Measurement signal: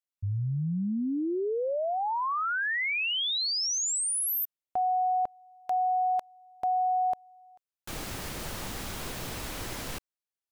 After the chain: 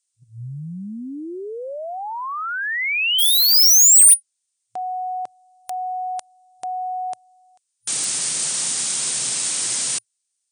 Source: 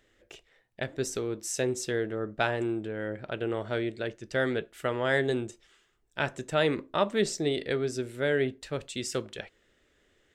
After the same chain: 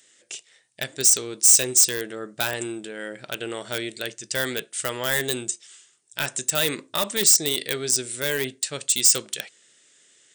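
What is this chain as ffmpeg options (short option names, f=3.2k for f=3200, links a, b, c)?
-filter_complex "[0:a]afftfilt=real='re*between(b*sr/4096,110,9600)':imag='im*between(b*sr/4096,110,9600)':win_size=4096:overlap=0.75,crystalizer=i=6.5:c=0,apsyclip=12dB,asplit=2[a][b];[b]aeval=exprs='(mod(1.58*val(0)+1,2)-1)/1.58':c=same,volume=-10.5dB[c];[a][c]amix=inputs=2:normalize=0,aemphasis=mode=production:type=50fm,volume=-16dB"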